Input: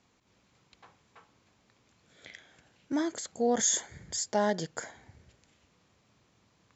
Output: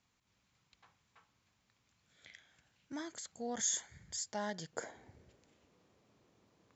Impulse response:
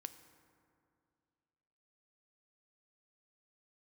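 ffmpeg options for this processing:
-af "asetnsamples=nb_out_samples=441:pad=0,asendcmd='4.73 equalizer g 8.5',equalizer=frequency=410:width=0.67:gain=-8.5,volume=-7dB"

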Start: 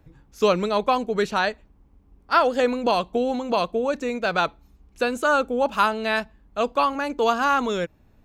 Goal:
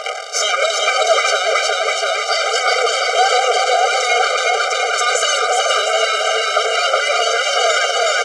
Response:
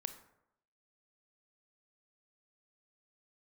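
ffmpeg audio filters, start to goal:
-filter_complex "[0:a]afftfilt=real='re*lt(hypot(re,im),0.224)':imag='im*lt(hypot(re,im),0.224)':win_size=1024:overlap=0.75,highshelf=frequency=2900:gain=9,acompressor=threshold=-33dB:ratio=10,aphaser=in_gain=1:out_gain=1:delay=2.9:decay=0.39:speed=1.1:type=sinusoidal,asoftclip=type=tanh:threshold=-22dB,aeval=exprs='val(0)+0.00562*sin(2*PI*930*n/s)':channel_layout=same,aeval=exprs='max(val(0),0)':channel_layout=same,acrusher=bits=2:mode=log:mix=0:aa=0.000001,highpass=frequency=100:width=0.5412,highpass=frequency=100:width=1.3066,equalizer=frequency=130:width_type=q:width=4:gain=-3,equalizer=frequency=240:width_type=q:width=4:gain=-10,equalizer=frequency=660:width_type=q:width=4:gain=5,equalizer=frequency=1100:width_type=q:width=4:gain=8,equalizer=frequency=2300:width_type=q:width=4:gain=3,equalizer=frequency=3900:width_type=q:width=4:gain=-6,lowpass=frequency=7100:width=0.5412,lowpass=frequency=7100:width=1.3066,asplit=2[link_01][link_02];[link_02]aecho=0:1:370|703|1003|1272|1515:0.631|0.398|0.251|0.158|0.1[link_03];[link_01][link_03]amix=inputs=2:normalize=0,alimiter=level_in=34dB:limit=-1dB:release=50:level=0:latency=1,afftfilt=real='re*eq(mod(floor(b*sr/1024/400),2),1)':imag='im*eq(mod(floor(b*sr/1024/400),2),1)':win_size=1024:overlap=0.75"

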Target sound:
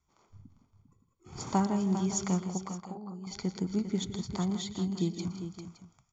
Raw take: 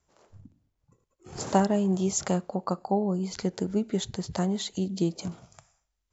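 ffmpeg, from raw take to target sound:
ffmpeg -i in.wav -filter_complex "[0:a]aecho=1:1:0.9:0.61,asettb=1/sr,asplit=3[link_01][link_02][link_03];[link_01]atrim=end=2.574[link_04];[link_02]atrim=start=2.57:end=3.27,asetpts=PTS-STARTPTS,afade=type=in:duration=0.004:curve=qsin,afade=type=out:start_time=0.696:duration=0.004:curve=qsin,acompressor=threshold=-35dB:ratio=5[link_05];[link_03]atrim=start=3.266[link_06];[link_04][link_05]acrossfade=duration=0.004:curve1=hsin:curve2=qsin[link_07];[link_07][link_06]acrossfade=duration=0.004:curve1=qsin:curve2=hsin,asettb=1/sr,asplit=3[link_08][link_09][link_10];[link_08]atrim=end=4.644[link_11];[link_09]atrim=start=4.64:end=5.08,asetpts=PTS-STARTPTS,afade=type=in:duration=0.004:curve=qsin,afade=type=out:start_time=0.436:duration=0.004:curve=qsin,bandreject=frequency=6000:width=6[link_12];[link_10]atrim=start=5.076[link_13];[link_11][link_12]acrossfade=duration=0.004:curve1=hsin:curve2=qsin[link_14];[link_14][link_13]acrossfade=duration=0.004:curve1=qsin:curve2=hsin,asplit=2[link_15][link_16];[link_16]aecho=0:1:117|162|186|400|567:0.141|0.237|0.1|0.316|0.168[link_17];[link_15][link_17]amix=inputs=2:normalize=0,aresample=16000,aresample=44100,volume=-6dB" out.wav

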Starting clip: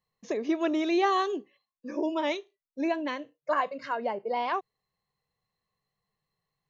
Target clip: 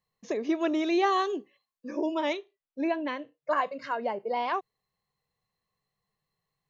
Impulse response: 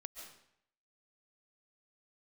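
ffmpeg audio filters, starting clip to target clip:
-filter_complex "[0:a]asettb=1/sr,asplit=3[link_01][link_02][link_03];[link_01]atrim=end=2.334[link_04];[link_02]atrim=start=2.33:end=3.51,asetpts=PTS-STARTPTS,afade=type=in:duration=0.004:curve=qsin,afade=type=out:start_time=1.176:duration=0.004:curve=qsin,lowpass=3800[link_05];[link_03]atrim=start=3.506[link_06];[link_04][link_05]acrossfade=duration=0.004:curve1=hsin:curve2=qsin[link_07];[link_07][link_06]acrossfade=duration=0.004:curve1=qsin:curve2=hsin"

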